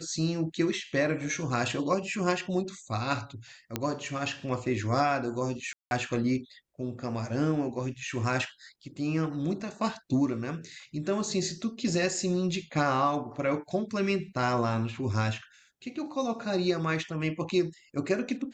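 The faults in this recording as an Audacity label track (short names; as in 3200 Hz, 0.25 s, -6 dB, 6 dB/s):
3.760000	3.760000	pop -13 dBFS
5.730000	5.910000	gap 0.181 s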